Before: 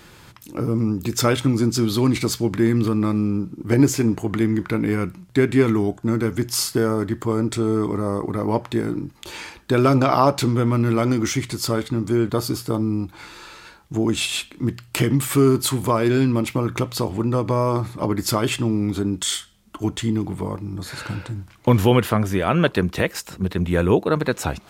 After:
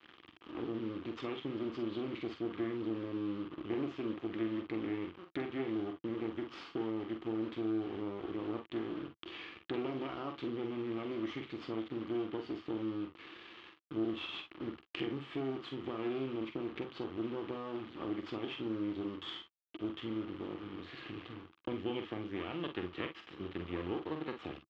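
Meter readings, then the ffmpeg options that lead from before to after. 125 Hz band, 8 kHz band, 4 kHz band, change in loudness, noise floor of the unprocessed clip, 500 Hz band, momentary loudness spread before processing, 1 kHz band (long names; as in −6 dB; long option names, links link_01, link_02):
−27.0 dB, below −40 dB, −18.0 dB, −18.5 dB, −48 dBFS, −17.5 dB, 10 LU, −20.5 dB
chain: -filter_complex "[0:a]acompressor=threshold=-31dB:ratio=2.5,afftfilt=real='re*(1-between(b*sr/4096,790,1600))':imag='im*(1-between(b*sr/4096,790,1600))':win_size=4096:overlap=0.75,acrusher=bits=4:dc=4:mix=0:aa=0.000001,highpass=110,equalizer=frequency=120:width_type=q:width=4:gain=-6,equalizer=frequency=180:width_type=q:width=4:gain=-5,equalizer=frequency=330:width_type=q:width=4:gain=10,equalizer=frequency=610:width_type=q:width=4:gain=-6,equalizer=frequency=1200:width_type=q:width=4:gain=10,equalizer=frequency=3100:width_type=q:width=4:gain=8,lowpass=frequency=3300:width=0.5412,lowpass=frequency=3300:width=1.3066,asplit=2[link_01][link_02];[link_02]aecho=0:1:45|58:0.422|0.188[link_03];[link_01][link_03]amix=inputs=2:normalize=0,volume=-8dB"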